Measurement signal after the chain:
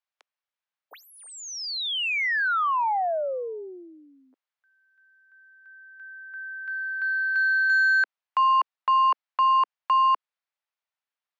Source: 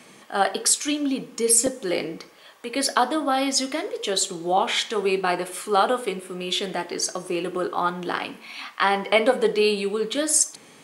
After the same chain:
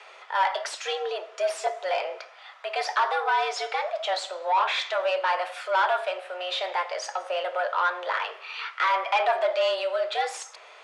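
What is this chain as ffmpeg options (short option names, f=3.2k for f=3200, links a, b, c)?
-filter_complex "[0:a]asplit=2[a][b];[b]highpass=f=720:p=1,volume=20dB,asoftclip=type=tanh:threshold=-5.5dB[c];[a][c]amix=inputs=2:normalize=0,lowpass=f=1.6k:p=1,volume=-6dB,highpass=330,lowpass=5.4k,afreqshift=180,volume=-7dB"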